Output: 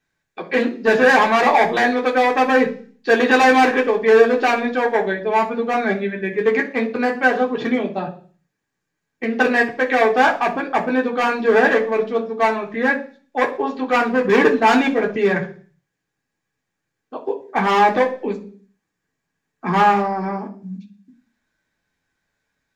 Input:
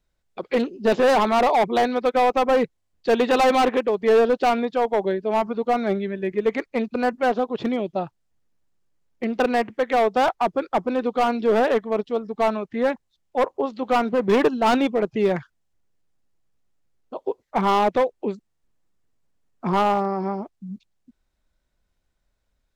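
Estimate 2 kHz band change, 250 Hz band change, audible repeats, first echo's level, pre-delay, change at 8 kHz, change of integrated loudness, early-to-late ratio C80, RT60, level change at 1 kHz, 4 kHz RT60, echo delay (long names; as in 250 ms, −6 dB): +11.5 dB, +3.5 dB, no echo audible, no echo audible, 3 ms, can't be measured, +4.5 dB, 18.0 dB, 0.45 s, +4.0 dB, 0.55 s, no echo audible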